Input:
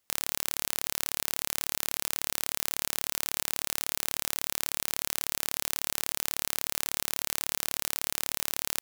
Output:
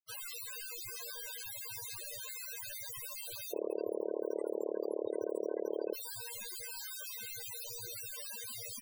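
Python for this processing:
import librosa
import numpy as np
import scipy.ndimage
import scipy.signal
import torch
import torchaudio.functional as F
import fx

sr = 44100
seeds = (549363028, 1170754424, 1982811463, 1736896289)

y = fx.bin_expand(x, sr, power=3.0)
y = fx.peak_eq(y, sr, hz=430.0, db=9.0, octaves=0.52, at=(3.52, 5.93), fade=0.02)
y = fx.spec_topn(y, sr, count=16)
y = y * librosa.db_to_amplitude(12.0)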